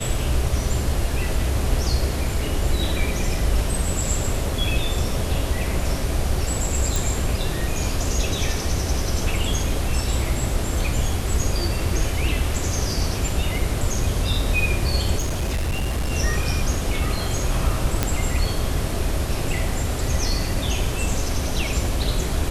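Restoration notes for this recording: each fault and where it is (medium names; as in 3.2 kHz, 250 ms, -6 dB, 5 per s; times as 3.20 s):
6.96 s: pop
15.18–16.11 s: clipped -19.5 dBFS
18.03 s: pop -4 dBFS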